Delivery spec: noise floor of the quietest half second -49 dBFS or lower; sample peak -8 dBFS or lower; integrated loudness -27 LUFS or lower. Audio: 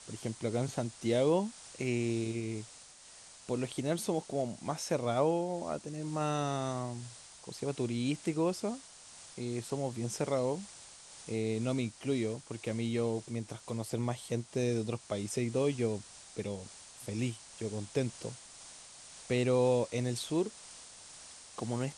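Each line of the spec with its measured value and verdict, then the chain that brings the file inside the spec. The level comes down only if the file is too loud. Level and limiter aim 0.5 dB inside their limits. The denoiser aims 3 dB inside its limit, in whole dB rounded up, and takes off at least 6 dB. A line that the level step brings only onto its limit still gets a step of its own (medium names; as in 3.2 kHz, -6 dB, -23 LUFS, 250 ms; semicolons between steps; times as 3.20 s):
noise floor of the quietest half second -54 dBFS: pass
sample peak -16.5 dBFS: pass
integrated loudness -34.5 LUFS: pass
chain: none needed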